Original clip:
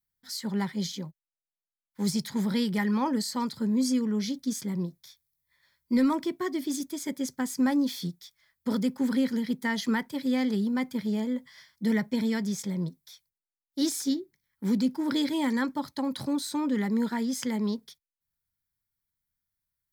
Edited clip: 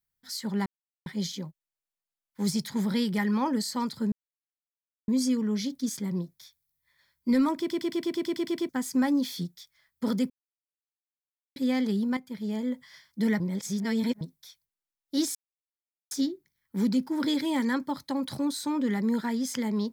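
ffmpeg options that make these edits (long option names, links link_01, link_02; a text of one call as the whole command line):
ffmpeg -i in.wav -filter_complex "[0:a]asplit=19[link_01][link_02][link_03][link_04][link_05][link_06][link_07][link_08][link_09][link_10][link_11][link_12][link_13][link_14][link_15][link_16][link_17][link_18][link_19];[link_01]atrim=end=0.66,asetpts=PTS-STARTPTS,afade=type=out:start_time=0.656:duration=0.004:curve=hsin,apad=pad_dur=0.4[link_20];[link_02]atrim=start=0.66:end=3.72,asetpts=PTS-STARTPTS,afade=type=in:duration=0.004:curve=hsin,afade=type=out:start_time=3.056:duration=0.004:curve=hsin,apad=pad_dur=0.96[link_21];[link_03]atrim=start=3.72:end=6.342,asetpts=PTS-STARTPTS,afade=type=in:duration=0.004:curve=hsin[link_22];[link_04]atrim=start=6.228:end=6.342[link_23];[link_05]atrim=start=6.228:end=6.342[link_24];[link_06]atrim=start=6.228:end=6.342[link_25];[link_07]atrim=start=6.228:end=6.342[link_26];[link_08]atrim=start=6.228:end=6.342[link_27];[link_09]atrim=start=6.228:end=6.342[link_28];[link_10]atrim=start=6.228:end=6.342[link_29];[link_11]atrim=start=6.228:end=6.342[link_30];[link_12]atrim=start=6.228:end=6.342[link_31];[link_13]atrim=start=7.328:end=8.94,asetpts=PTS-STARTPTS,afade=type=out:start_time=1.608:duration=0.004:curve=hsin[link_32];[link_14]atrim=start=8.94:end=10.2,asetpts=PTS-STARTPTS,volume=0[link_33];[link_15]atrim=start=10.2:end=10.81,asetpts=PTS-STARTPTS,afade=type=in:duration=0.004:curve=hsin,afade=type=out:start_time=0.606:duration=0.004:curve=hsin:silence=0.237137[link_34];[link_16]atrim=start=10.81:end=12.042,asetpts=PTS-STARTPTS,afade=type=in:duration=0.52:silence=0.237137[link_35];[link_17]atrim=start=12.038:end=12.852,asetpts=PTS-STARTPTS,areverse[link_36];[link_18]atrim=start=12.848:end=13.99,asetpts=PTS-STARTPTS,afade=type=out:start_time=1.138:duration=0.004:curve=hsin,apad=pad_dur=0.76[link_37];[link_19]atrim=start=13.99,asetpts=PTS-STARTPTS,afade=type=in:duration=0.004:curve=hsin[link_38];[link_20][link_21][link_22]concat=n=3:v=0:a=1[link_39];[link_39][link_23]acrossfade=duration=0.004:curve1=hsin:curve2=hsin[link_40];[link_40][link_24]acrossfade=duration=0.004:curve1=hsin:curve2=hsin[link_41];[link_41][link_25]acrossfade=duration=0.004:curve1=hsin:curve2=hsin[link_42];[link_42][link_26]acrossfade=duration=0.004:curve1=hsin:curve2=hsin[link_43];[link_43][link_27]acrossfade=duration=0.004:curve1=hsin:curve2=hsin[link_44];[link_44][link_28]acrossfade=duration=0.004:curve1=hsin:curve2=hsin[link_45];[link_45][link_29]acrossfade=duration=0.004:curve1=hsin:curve2=hsin[link_46];[link_46][link_30]acrossfade=duration=0.004:curve1=hsin:curve2=hsin[link_47];[link_47][link_31]acrossfade=duration=0.004:curve1=hsin:curve2=hsin[link_48];[link_32][link_33][link_34][link_35]concat=n=4:v=0:a=1[link_49];[link_48][link_49]acrossfade=duration=0.004:curve1=hsin:curve2=hsin[link_50];[link_50][link_36]acrossfade=duration=0.004:curve1=hsin:curve2=hsin[link_51];[link_37][link_38]concat=n=2:v=0:a=1[link_52];[link_51][link_52]acrossfade=duration=0.004:curve1=hsin:curve2=hsin" out.wav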